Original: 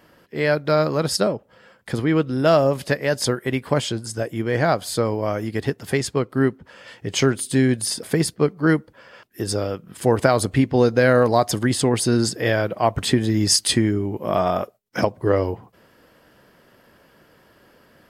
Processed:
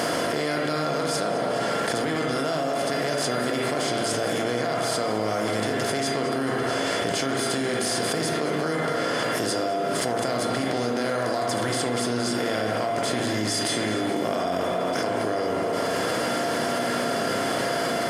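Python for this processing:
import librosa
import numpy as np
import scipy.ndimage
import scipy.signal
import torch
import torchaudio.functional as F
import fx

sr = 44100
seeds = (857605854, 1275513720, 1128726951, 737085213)

p1 = fx.bin_compress(x, sr, power=0.4)
p2 = scipy.signal.sosfilt(scipy.signal.butter(2, 120.0, 'highpass', fs=sr, output='sos'), p1)
p3 = fx.low_shelf(p2, sr, hz=200.0, db=-3.5)
p4 = fx.comb_fb(p3, sr, f0_hz=690.0, decay_s=0.3, harmonics='all', damping=0.0, mix_pct=80)
p5 = p4 + fx.echo_split(p4, sr, split_hz=390.0, low_ms=90, high_ms=213, feedback_pct=52, wet_db=-15.0, dry=0)
p6 = fx.rev_spring(p5, sr, rt60_s=1.6, pass_ms=(33, 37, 56), chirp_ms=55, drr_db=0.0)
p7 = fx.env_flatten(p6, sr, amount_pct=100)
y = p7 * 10.0 ** (-7.0 / 20.0)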